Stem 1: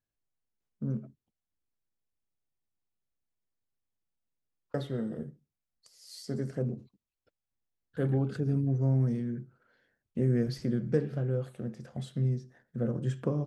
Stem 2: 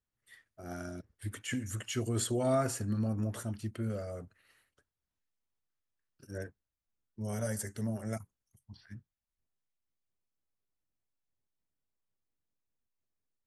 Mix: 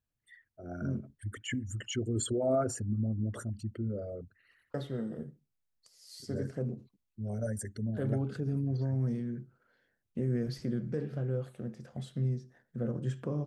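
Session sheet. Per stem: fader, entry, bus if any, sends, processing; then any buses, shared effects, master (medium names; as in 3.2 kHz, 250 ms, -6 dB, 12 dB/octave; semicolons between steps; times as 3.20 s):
-2.5 dB, 0.00 s, no send, peak limiter -21.5 dBFS, peak gain reduction 7 dB
+0.5 dB, 0.00 s, no send, resonances exaggerated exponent 2; low-pass 8.8 kHz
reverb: none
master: none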